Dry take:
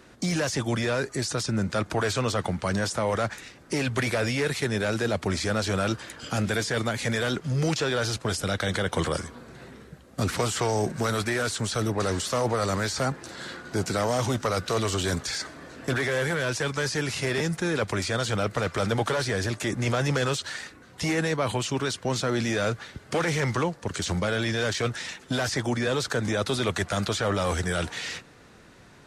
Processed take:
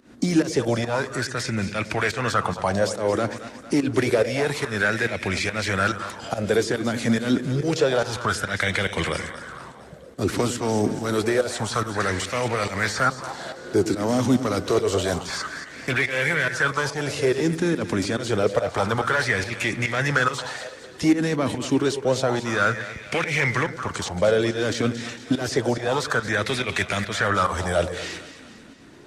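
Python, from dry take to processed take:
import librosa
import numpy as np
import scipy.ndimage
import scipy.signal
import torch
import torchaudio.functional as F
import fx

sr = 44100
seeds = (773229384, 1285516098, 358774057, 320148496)

y = fx.volume_shaper(x, sr, bpm=142, per_beat=1, depth_db=-17, release_ms=165.0, shape='fast start')
y = fx.echo_split(y, sr, split_hz=540.0, low_ms=103, high_ms=226, feedback_pct=52, wet_db=-11.5)
y = fx.bell_lfo(y, sr, hz=0.28, low_hz=250.0, high_hz=2400.0, db=13)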